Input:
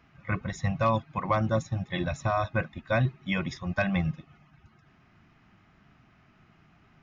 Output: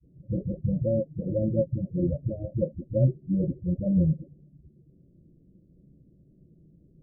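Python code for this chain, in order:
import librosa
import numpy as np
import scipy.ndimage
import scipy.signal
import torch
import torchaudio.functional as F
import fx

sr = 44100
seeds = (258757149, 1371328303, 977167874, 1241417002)

y = fx.spec_delay(x, sr, highs='late', ms=633)
y = scipy.signal.sosfilt(scipy.signal.butter(16, 570.0, 'lowpass', fs=sr, output='sos'), y)
y = F.gain(torch.from_numpy(y), 6.0).numpy()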